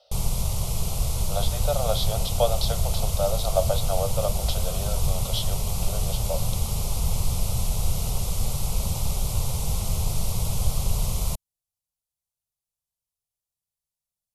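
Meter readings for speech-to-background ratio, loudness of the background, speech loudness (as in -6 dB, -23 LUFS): -2.5 dB, -28.0 LUFS, -30.5 LUFS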